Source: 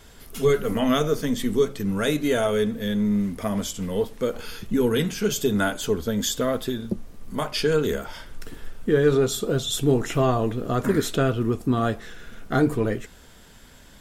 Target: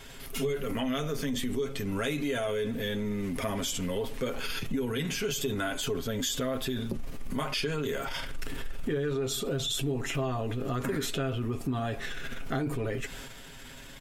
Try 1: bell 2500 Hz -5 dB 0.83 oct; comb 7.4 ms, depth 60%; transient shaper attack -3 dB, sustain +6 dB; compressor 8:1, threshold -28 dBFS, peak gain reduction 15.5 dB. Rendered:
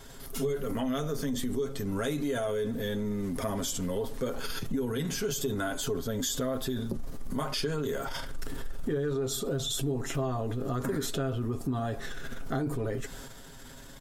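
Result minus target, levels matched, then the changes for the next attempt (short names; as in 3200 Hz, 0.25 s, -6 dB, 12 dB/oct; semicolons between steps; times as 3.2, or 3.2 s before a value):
2000 Hz band -3.5 dB
change: bell 2500 Hz +6 dB 0.83 oct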